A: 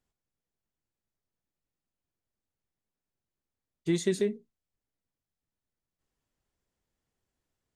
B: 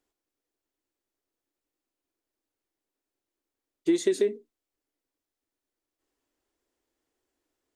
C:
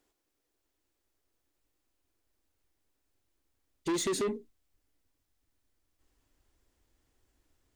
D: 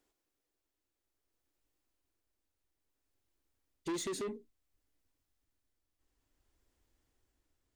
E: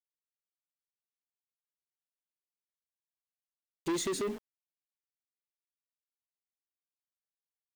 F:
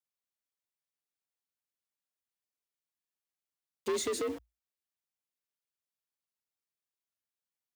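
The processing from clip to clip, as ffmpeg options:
-af "lowshelf=f=230:t=q:w=3:g=-9,acompressor=threshold=-22dB:ratio=6,volume=3dB"
-af "asubboost=boost=6.5:cutoff=140,asoftclip=type=tanh:threshold=-33dB,volume=5.5dB"
-af "tremolo=f=0.59:d=0.37,volume=-3.5dB"
-af "aeval=exprs='val(0)*gte(abs(val(0)),0.00355)':c=same,volume=5dB"
-af "afreqshift=56"

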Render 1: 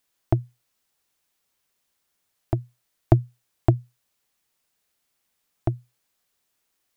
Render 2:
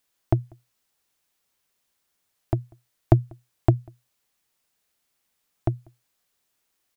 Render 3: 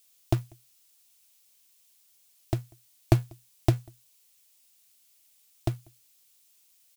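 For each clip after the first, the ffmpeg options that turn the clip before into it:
-filter_complex "[0:a]asplit=2[a][b];[b]adelay=192.4,volume=-29dB,highshelf=f=4k:g=-4.33[c];[a][c]amix=inputs=2:normalize=0"
-af "aexciter=amount=4.6:drive=3.9:freq=2.3k,acrusher=bits=4:mode=log:mix=0:aa=0.000001,volume=-4dB"

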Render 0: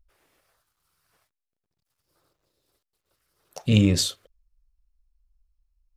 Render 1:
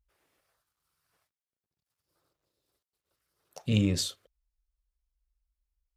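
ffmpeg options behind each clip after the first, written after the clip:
-af "highpass=41,volume=-7dB"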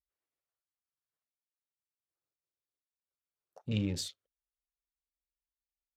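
-af "afwtdn=0.00501,volume=-7dB"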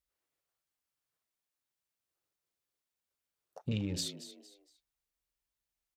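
-filter_complex "[0:a]acompressor=threshold=-36dB:ratio=6,asplit=4[a][b][c][d];[b]adelay=230,afreqshift=69,volume=-13dB[e];[c]adelay=460,afreqshift=138,volume=-22.6dB[f];[d]adelay=690,afreqshift=207,volume=-32.3dB[g];[a][e][f][g]amix=inputs=4:normalize=0,volume=5dB"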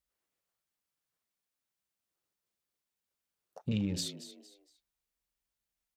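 -af "equalizer=f=200:t=o:w=0.34:g=6"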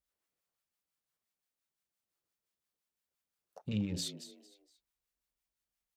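-filter_complex "[0:a]acrossover=split=810[a][b];[a]aeval=exprs='val(0)*(1-0.5/2+0.5/2*cos(2*PI*5.8*n/s))':c=same[c];[b]aeval=exprs='val(0)*(1-0.5/2-0.5/2*cos(2*PI*5.8*n/s))':c=same[d];[c][d]amix=inputs=2:normalize=0"

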